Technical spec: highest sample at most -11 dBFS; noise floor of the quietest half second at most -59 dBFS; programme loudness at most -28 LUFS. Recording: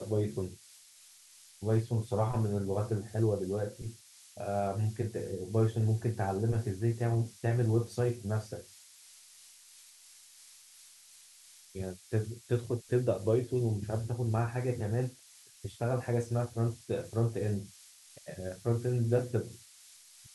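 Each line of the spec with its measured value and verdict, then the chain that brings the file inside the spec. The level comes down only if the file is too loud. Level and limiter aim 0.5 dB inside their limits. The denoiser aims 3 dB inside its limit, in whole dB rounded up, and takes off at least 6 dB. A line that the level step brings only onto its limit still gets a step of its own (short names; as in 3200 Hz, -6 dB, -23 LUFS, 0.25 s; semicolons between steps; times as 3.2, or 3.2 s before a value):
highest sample -16.0 dBFS: OK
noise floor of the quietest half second -58 dBFS: fail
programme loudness -33.0 LUFS: OK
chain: denoiser 6 dB, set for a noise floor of -58 dBFS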